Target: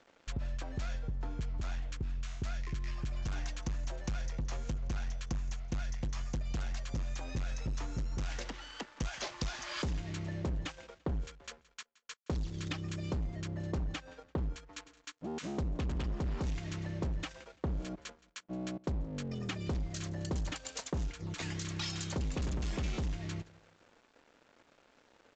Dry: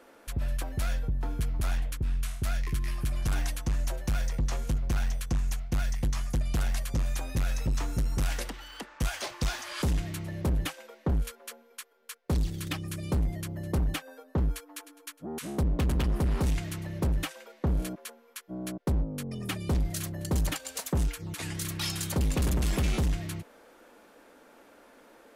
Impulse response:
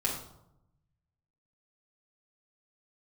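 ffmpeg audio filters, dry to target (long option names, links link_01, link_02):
-af "acompressor=threshold=-33dB:ratio=6,aresample=16000,aeval=exprs='sgn(val(0))*max(abs(val(0))-0.00178,0)':channel_layout=same,aresample=44100,aecho=1:1:170|340|510:0.0794|0.0286|0.0103"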